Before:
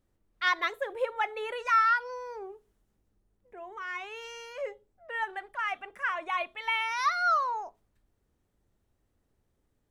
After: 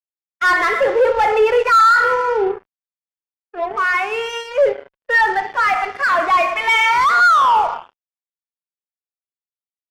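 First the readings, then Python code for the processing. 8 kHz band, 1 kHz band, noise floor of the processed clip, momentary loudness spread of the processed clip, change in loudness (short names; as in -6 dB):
+15.0 dB, +15.5 dB, under -85 dBFS, 11 LU, +15.0 dB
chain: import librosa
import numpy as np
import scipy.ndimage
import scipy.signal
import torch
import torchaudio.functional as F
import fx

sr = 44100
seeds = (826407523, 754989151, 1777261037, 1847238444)

y = fx.rev_spring(x, sr, rt60_s=1.1, pass_ms=(37, 57), chirp_ms=50, drr_db=7.5)
y = fx.fuzz(y, sr, gain_db=40.0, gate_db=-46.0)
y = fx.high_shelf(y, sr, hz=4500.0, db=-3.0)
y = fx.notch(y, sr, hz=3900.0, q=22.0)
y = fx.spectral_expand(y, sr, expansion=1.5)
y = y * 10.0 ** (4.0 / 20.0)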